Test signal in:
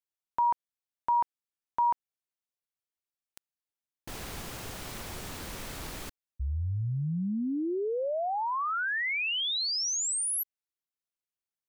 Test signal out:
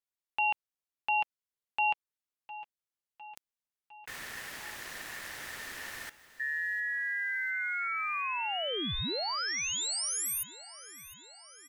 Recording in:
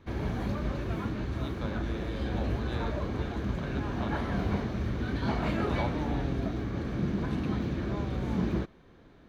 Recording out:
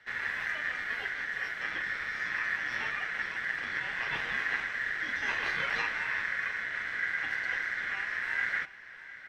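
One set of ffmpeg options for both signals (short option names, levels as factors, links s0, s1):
-af "aeval=exprs='val(0)*sin(2*PI*1800*n/s)':c=same,aecho=1:1:706|1412|2118|2824|3530|4236:0.133|0.08|0.048|0.0288|0.0173|0.0104"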